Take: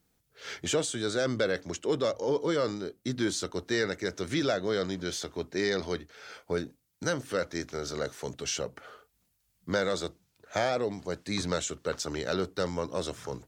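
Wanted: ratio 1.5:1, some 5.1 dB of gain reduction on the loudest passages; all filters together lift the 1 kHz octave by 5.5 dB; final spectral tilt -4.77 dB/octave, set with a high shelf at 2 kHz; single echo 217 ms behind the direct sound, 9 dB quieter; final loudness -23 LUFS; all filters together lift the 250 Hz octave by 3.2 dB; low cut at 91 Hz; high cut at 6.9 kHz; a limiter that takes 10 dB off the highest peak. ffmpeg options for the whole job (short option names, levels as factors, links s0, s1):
-af "highpass=91,lowpass=6900,equalizer=f=250:t=o:g=4,equalizer=f=1000:t=o:g=9,highshelf=f=2000:g=-4.5,acompressor=threshold=0.0178:ratio=1.5,alimiter=level_in=1.26:limit=0.0631:level=0:latency=1,volume=0.794,aecho=1:1:217:0.355,volume=5.01"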